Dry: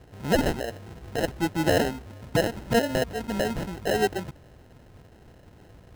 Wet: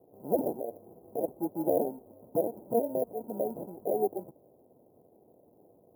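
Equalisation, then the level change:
high-pass filter 330 Hz 12 dB per octave
inverse Chebyshev band-stop filter 2,000–4,900 Hz, stop band 70 dB
parametric band 5,600 Hz −12.5 dB 0.23 octaves
−2.0 dB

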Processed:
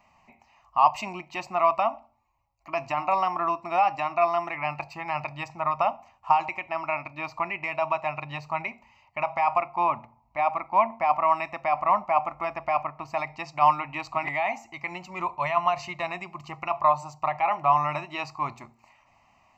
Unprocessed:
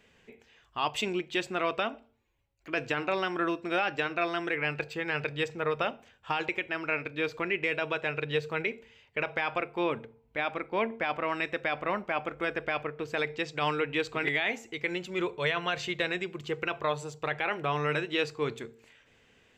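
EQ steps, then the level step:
flat-topped bell 850 Hz +13.5 dB 1.3 octaves
phaser with its sweep stopped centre 2,300 Hz, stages 8
0.0 dB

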